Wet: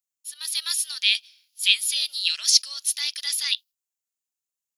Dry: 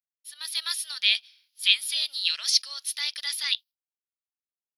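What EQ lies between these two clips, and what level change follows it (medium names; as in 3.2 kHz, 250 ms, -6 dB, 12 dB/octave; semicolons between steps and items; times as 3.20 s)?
peaking EQ 2.7 kHz +3.5 dB 0.36 oct; treble shelf 5.4 kHz +10.5 dB; peaking EQ 7 kHz +9.5 dB 0.45 oct; -3.0 dB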